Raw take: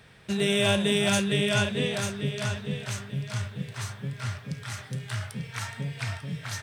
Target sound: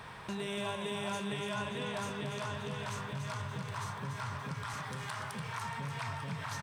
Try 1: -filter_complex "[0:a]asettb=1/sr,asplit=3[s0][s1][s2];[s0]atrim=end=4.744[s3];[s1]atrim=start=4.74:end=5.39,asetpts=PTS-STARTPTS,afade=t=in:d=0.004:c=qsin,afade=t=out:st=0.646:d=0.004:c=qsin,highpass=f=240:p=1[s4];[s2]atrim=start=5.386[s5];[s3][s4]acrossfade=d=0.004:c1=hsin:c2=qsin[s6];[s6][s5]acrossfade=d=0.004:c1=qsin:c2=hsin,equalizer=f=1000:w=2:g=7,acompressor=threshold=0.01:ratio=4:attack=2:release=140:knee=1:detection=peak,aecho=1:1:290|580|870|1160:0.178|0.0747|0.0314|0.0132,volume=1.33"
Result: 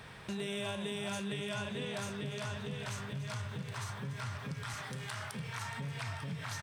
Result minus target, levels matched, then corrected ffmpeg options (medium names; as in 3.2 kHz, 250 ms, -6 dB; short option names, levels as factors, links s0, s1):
echo-to-direct -8 dB; 1 kHz band -4.5 dB
-filter_complex "[0:a]asettb=1/sr,asplit=3[s0][s1][s2];[s0]atrim=end=4.744[s3];[s1]atrim=start=4.74:end=5.39,asetpts=PTS-STARTPTS,afade=t=in:d=0.004:c=qsin,afade=t=out:st=0.646:d=0.004:c=qsin,highpass=f=240:p=1[s4];[s2]atrim=start=5.386[s5];[s3][s4]acrossfade=d=0.004:c1=hsin:c2=qsin[s6];[s6][s5]acrossfade=d=0.004:c1=qsin:c2=hsin,equalizer=f=1000:w=2:g=16.5,acompressor=threshold=0.01:ratio=4:attack=2:release=140:knee=1:detection=peak,aecho=1:1:290|580|870|1160|1450:0.447|0.188|0.0788|0.0331|0.0139,volume=1.33"